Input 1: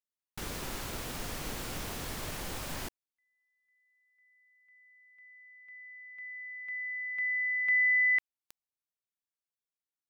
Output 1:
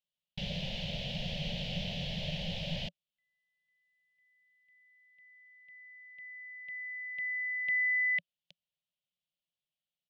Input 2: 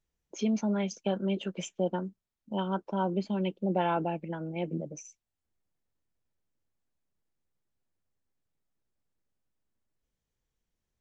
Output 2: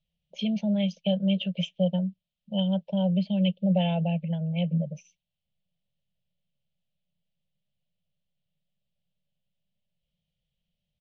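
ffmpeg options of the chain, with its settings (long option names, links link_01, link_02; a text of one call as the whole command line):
ffmpeg -i in.wav -af "firequalizer=gain_entry='entry(100,0);entry(170,13);entry(310,-23);entry(570,6);entry(1200,-27);entry(1800,-7);entry(3000,11);entry(8700,-30)':delay=0.05:min_phase=1" out.wav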